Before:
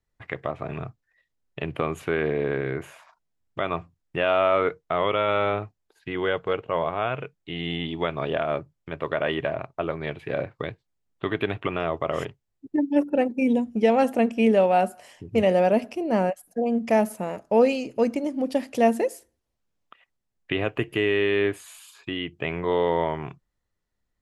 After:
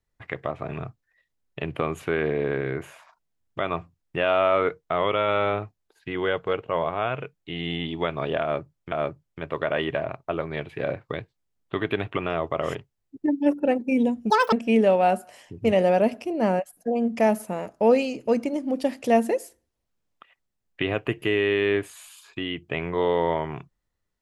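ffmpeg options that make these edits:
ffmpeg -i in.wav -filter_complex "[0:a]asplit=4[link_01][link_02][link_03][link_04];[link_01]atrim=end=8.922[link_05];[link_02]atrim=start=8.418:end=13.804[link_06];[link_03]atrim=start=13.8:end=14.23,asetpts=PTS-STARTPTS,asetrate=84231,aresample=44100,atrim=end_sample=9928,asetpts=PTS-STARTPTS[link_07];[link_04]atrim=start=14.226[link_08];[link_05][link_06]acrossfade=duration=0.004:curve1=hsin:curve2=hsin[link_09];[link_09][link_07]acrossfade=duration=0.004:curve1=hsin:curve2=hsin[link_10];[link_10][link_08]acrossfade=duration=0.004:curve1=hsin:curve2=hsin" out.wav

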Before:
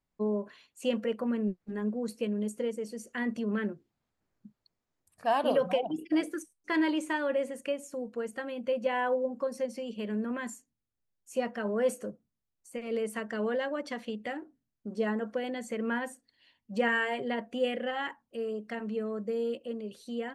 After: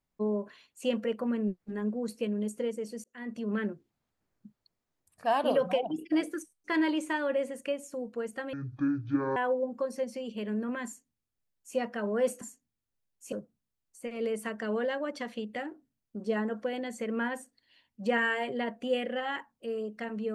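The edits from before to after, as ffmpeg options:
ffmpeg -i in.wav -filter_complex "[0:a]asplit=6[link_01][link_02][link_03][link_04][link_05][link_06];[link_01]atrim=end=3.04,asetpts=PTS-STARTPTS,afade=type=out:start_time=3.036:duration=0.004:curve=hsin[link_07];[link_02]atrim=start=3.04:end=8.534,asetpts=PTS-STARTPTS,afade=type=in:duration=0.51[link_08];[link_03]atrim=start=8.53:end=8.98,asetpts=PTS-STARTPTS,asetrate=23814,aresample=44100[link_09];[link_04]atrim=start=8.976:end=12.032[link_10];[link_05]atrim=start=10.468:end=11.382[link_11];[link_06]atrim=start=12.028[link_12];[link_07][link_08]concat=n=2:v=0:a=1[link_13];[link_13][link_09]acrossfade=duration=0.004:curve1=hsin:curve2=hsin[link_14];[link_14][link_10]acrossfade=duration=0.004:curve1=hsin:curve2=hsin[link_15];[link_15][link_11]acrossfade=duration=0.004:curve1=hsin:curve2=hsin[link_16];[link_16][link_12]acrossfade=duration=0.004:curve1=hsin:curve2=hsin" out.wav

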